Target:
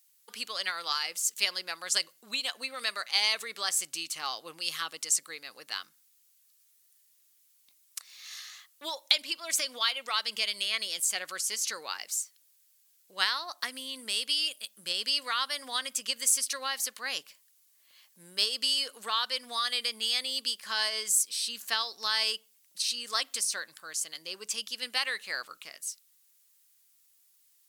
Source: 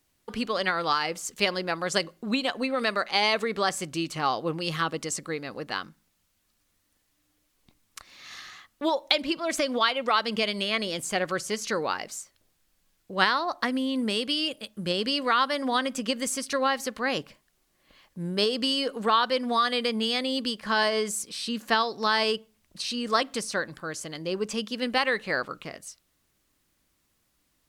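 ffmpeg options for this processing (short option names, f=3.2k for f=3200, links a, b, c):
-af "aderivative,volume=6dB"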